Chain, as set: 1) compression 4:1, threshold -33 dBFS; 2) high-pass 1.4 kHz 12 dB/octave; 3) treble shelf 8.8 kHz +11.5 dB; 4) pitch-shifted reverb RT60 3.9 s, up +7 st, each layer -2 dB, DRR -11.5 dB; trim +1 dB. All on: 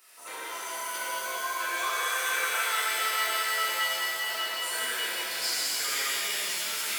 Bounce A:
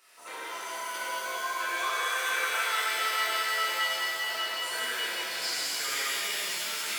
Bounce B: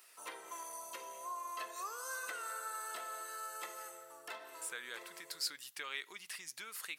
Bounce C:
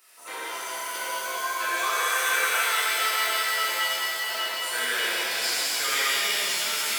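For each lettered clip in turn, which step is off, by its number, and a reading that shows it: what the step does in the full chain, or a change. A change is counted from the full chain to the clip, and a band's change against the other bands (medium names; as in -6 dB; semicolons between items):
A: 3, 8 kHz band -3.5 dB; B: 4, 4 kHz band -5.5 dB; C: 1, mean gain reduction 3.0 dB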